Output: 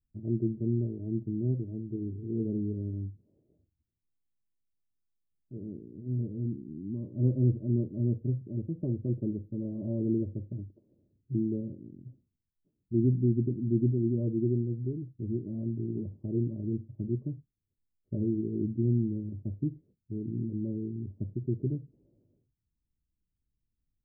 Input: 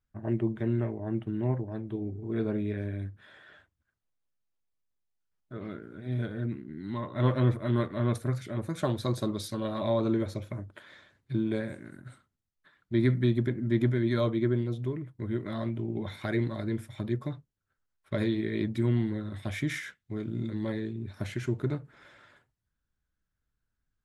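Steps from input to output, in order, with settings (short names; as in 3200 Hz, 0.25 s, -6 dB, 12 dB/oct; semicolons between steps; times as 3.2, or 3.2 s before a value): inverse Chebyshev band-stop 1500–9900 Hz, stop band 70 dB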